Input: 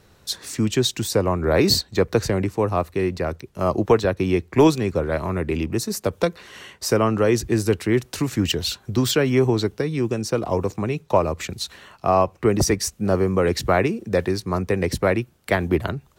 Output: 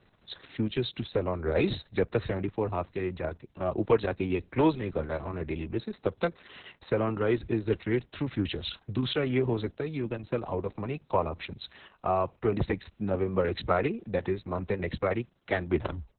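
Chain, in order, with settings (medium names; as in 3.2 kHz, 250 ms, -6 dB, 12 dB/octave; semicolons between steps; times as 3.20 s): tape stop on the ending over 0.32 s; trim -7.5 dB; Opus 6 kbps 48 kHz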